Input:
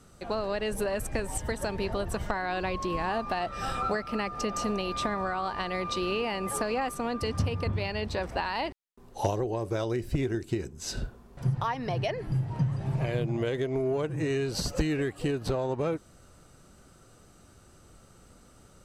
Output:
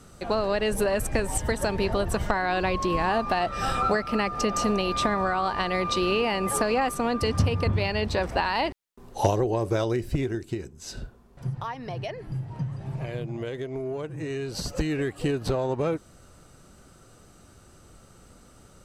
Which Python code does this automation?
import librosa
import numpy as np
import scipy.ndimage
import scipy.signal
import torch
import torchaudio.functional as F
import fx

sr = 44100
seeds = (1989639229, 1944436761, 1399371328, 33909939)

y = fx.gain(x, sr, db=fx.line((9.72, 5.5), (10.84, -3.5), (14.25, -3.5), (15.22, 3.0)))